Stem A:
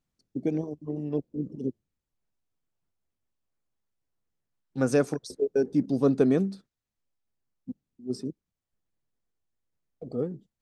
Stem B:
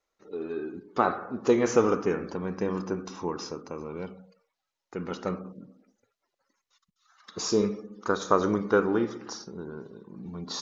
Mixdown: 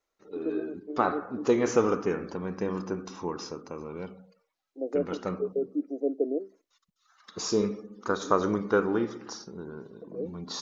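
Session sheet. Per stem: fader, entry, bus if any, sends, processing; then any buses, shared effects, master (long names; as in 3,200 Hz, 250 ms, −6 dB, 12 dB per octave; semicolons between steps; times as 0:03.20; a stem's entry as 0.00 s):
−4.0 dB, 0.00 s, no send, elliptic band-pass filter 290–680 Hz, stop band 40 dB
−1.5 dB, 0.00 s, no send, no processing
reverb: not used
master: no processing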